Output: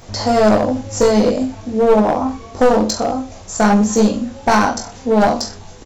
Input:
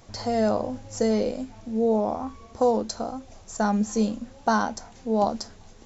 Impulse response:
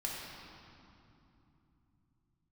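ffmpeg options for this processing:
-af "aecho=1:1:20|42|66.2|92.82|122.1:0.631|0.398|0.251|0.158|0.1,aeval=exprs='clip(val(0),-1,0.0794)':channel_layout=same,alimiter=level_in=11.5dB:limit=-1dB:release=50:level=0:latency=1,volume=-1dB"

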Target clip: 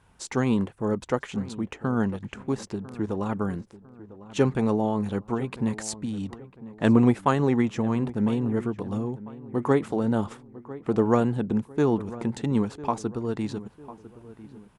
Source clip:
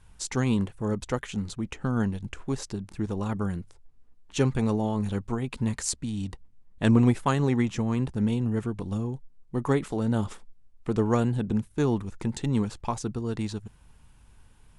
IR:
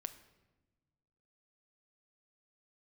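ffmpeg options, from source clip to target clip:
-filter_complex "[0:a]highpass=frequency=280:poles=1,highshelf=frequency=2100:gain=-11,asplit=2[link_01][link_02];[link_02]adelay=1000,lowpass=frequency=1700:poles=1,volume=-16.5dB,asplit=2[link_03][link_04];[link_04]adelay=1000,lowpass=frequency=1700:poles=1,volume=0.4,asplit=2[link_05][link_06];[link_06]adelay=1000,lowpass=frequency=1700:poles=1,volume=0.4[link_07];[link_01][link_03][link_05][link_07]amix=inputs=4:normalize=0,volume=6dB"

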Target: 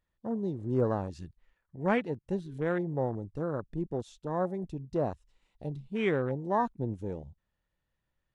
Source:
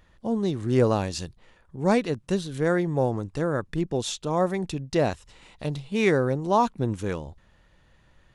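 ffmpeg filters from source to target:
ffmpeg -i in.wav -filter_complex "[0:a]afwtdn=0.0282,asettb=1/sr,asplit=3[link_01][link_02][link_03];[link_01]atrim=end=1.114[link_04];[link_02]atrim=start=1.11:end=2.54,asetpts=PTS-STARTPTS,afade=type=in:duration=0.004:curve=qsin,afade=type=out:start_time=1.426:duration=0.004:curve=qsin,equalizer=frequency=1800:width=1:gain=7.5[link_05];[link_03]atrim=start=2.536[link_06];[link_04][link_05]acrossfade=duration=0.004:curve1=hsin:curve2=qsin[link_07];[link_07][link_06]acrossfade=duration=0.004:curve1=qsin:curve2=hsin,volume=-7dB" out.wav

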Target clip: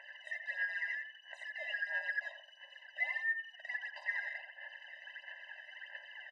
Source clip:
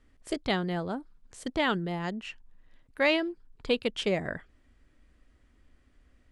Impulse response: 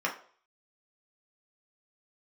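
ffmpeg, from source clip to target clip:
-filter_complex "[0:a]afftfilt=real='real(if(lt(b,272),68*(eq(floor(b/68),0)*1+eq(floor(b/68),1)*0+eq(floor(b/68),2)*3+eq(floor(b/68),3)*2)+mod(b,68),b),0)':imag='imag(if(lt(b,272),68*(eq(floor(b/68),0)*1+eq(floor(b/68),1)*0+eq(floor(b/68),2)*3+eq(floor(b/68),3)*2)+mod(b,68),b),0)':win_size=2048:overlap=0.75,highpass=frequency=58:width=0.5412,highpass=frequency=58:width=1.3066,equalizer=frequency=600:width=2.6:gain=3,alimiter=level_in=0.5dB:limit=-24dB:level=0:latency=1:release=35,volume=-0.5dB,acompressor=threshold=-52dB:ratio=3,aeval=exprs='(tanh(1260*val(0)+0.4)-tanh(0.4))/1260':channel_layout=same,aphaser=in_gain=1:out_gain=1:delay=1.6:decay=0.71:speed=1.5:type=sinusoidal,lowpass=frequency=2300:width_type=q:width=4.6,asplit=2[link_01][link_02];[link_02]adelay=86,lowpass=frequency=1600:poles=1,volume=-4.5dB,asplit=2[link_03][link_04];[link_04]adelay=86,lowpass=frequency=1600:poles=1,volume=0.38,asplit=2[link_05][link_06];[link_06]adelay=86,lowpass=frequency=1600:poles=1,volume=0.38,asplit=2[link_07][link_08];[link_08]adelay=86,lowpass=frequency=1600:poles=1,volume=0.38,asplit=2[link_09][link_10];[link_10]adelay=86,lowpass=frequency=1600:poles=1,volume=0.38[link_11];[link_01][link_03][link_05][link_07][link_09][link_11]amix=inputs=6:normalize=0,afftfilt=real='re*eq(mod(floor(b*sr/1024/520),2),1)':imag='im*eq(mod(floor(b*sr/1024/520),2),1)':win_size=1024:overlap=0.75,volume=16dB"

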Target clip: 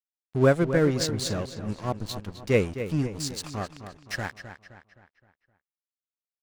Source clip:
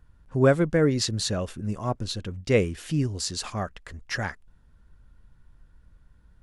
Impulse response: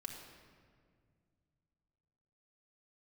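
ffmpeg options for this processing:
-filter_complex "[0:a]aeval=exprs='sgn(val(0))*max(abs(val(0))-0.0141,0)':channel_layout=same,asplit=2[link_01][link_02];[link_02]adelay=260,lowpass=frequency=4700:poles=1,volume=-10.5dB,asplit=2[link_03][link_04];[link_04]adelay=260,lowpass=frequency=4700:poles=1,volume=0.46,asplit=2[link_05][link_06];[link_06]adelay=260,lowpass=frequency=4700:poles=1,volume=0.46,asplit=2[link_07][link_08];[link_08]adelay=260,lowpass=frequency=4700:poles=1,volume=0.46,asplit=2[link_09][link_10];[link_10]adelay=260,lowpass=frequency=4700:poles=1,volume=0.46[link_11];[link_03][link_05][link_07][link_09][link_11]amix=inputs=5:normalize=0[link_12];[link_01][link_12]amix=inputs=2:normalize=0"

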